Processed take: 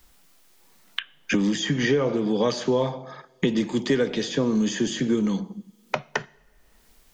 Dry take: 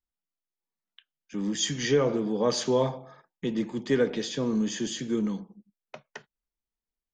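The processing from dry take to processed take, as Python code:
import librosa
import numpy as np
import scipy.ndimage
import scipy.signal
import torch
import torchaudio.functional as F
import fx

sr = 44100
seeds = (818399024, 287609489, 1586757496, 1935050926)

y = fx.lowpass(x, sr, hz=3600.0, slope=6, at=(1.37, 3.48))
y = fx.rev_double_slope(y, sr, seeds[0], early_s=0.54, late_s=1.6, knee_db=-23, drr_db=20.0)
y = fx.band_squash(y, sr, depth_pct=100)
y = y * 10.0 ** (4.5 / 20.0)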